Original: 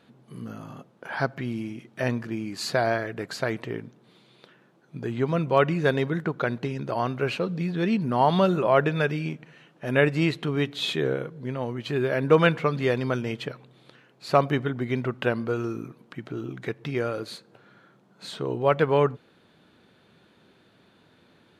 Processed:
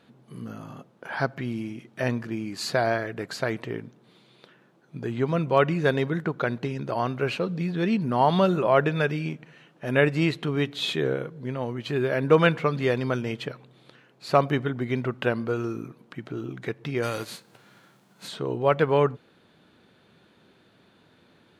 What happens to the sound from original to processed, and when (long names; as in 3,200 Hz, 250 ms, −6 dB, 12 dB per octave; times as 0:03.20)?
0:17.02–0:18.27: spectral envelope flattened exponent 0.6